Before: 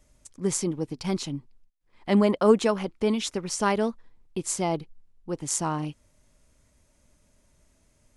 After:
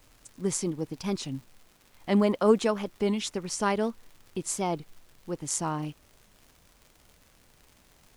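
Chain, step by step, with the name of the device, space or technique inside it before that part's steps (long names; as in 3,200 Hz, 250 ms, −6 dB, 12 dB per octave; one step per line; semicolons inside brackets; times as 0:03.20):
warped LP (wow of a warped record 33 1/3 rpm, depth 100 cents; surface crackle 130 per second −41 dBFS; pink noise bed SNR 32 dB)
level −2.5 dB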